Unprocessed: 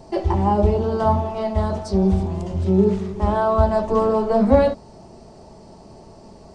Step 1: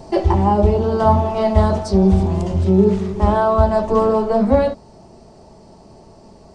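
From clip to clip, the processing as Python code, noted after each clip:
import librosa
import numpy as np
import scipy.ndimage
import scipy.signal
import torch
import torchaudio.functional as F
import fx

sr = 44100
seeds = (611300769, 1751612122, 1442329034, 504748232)

y = fx.rider(x, sr, range_db=10, speed_s=0.5)
y = F.gain(torch.from_numpy(y), 3.5).numpy()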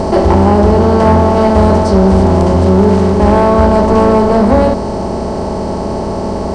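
y = fx.bin_compress(x, sr, power=0.4)
y = fx.peak_eq(y, sr, hz=260.0, db=2.5, octaves=0.98)
y = 10.0 ** (-3.5 / 20.0) * np.tanh(y / 10.0 ** (-3.5 / 20.0))
y = F.gain(torch.from_numpy(y), 2.5).numpy()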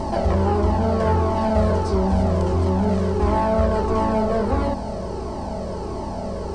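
y = fx.comb_cascade(x, sr, direction='falling', hz=1.5)
y = F.gain(torch.from_numpy(y), -6.5).numpy()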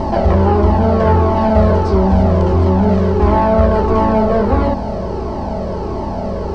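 y = fx.air_absorb(x, sr, metres=140.0)
y = F.gain(torch.from_numpy(y), 7.5).numpy()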